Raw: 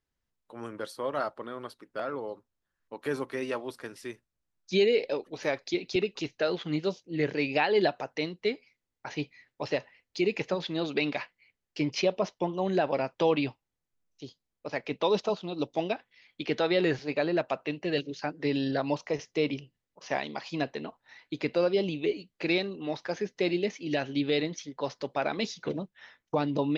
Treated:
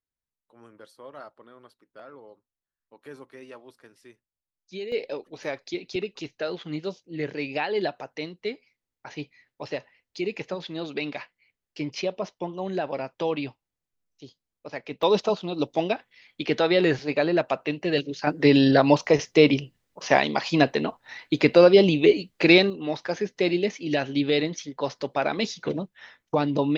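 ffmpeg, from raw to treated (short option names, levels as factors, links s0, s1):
-af "asetnsamples=n=441:p=0,asendcmd='4.92 volume volume -2dB;15.03 volume volume 5dB;18.27 volume volume 11.5dB;22.7 volume volume 4.5dB',volume=0.266"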